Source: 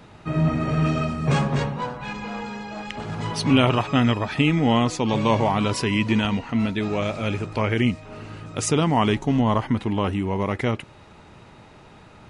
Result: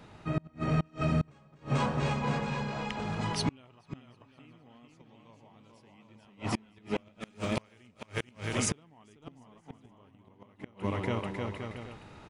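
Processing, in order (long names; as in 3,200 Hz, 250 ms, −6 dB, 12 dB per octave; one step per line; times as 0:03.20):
0:07.20–0:07.86: spectral envelope flattened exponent 0.6
bouncing-ball delay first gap 440 ms, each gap 0.7×, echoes 5
gate with flip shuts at −12 dBFS, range −33 dB
level −5.5 dB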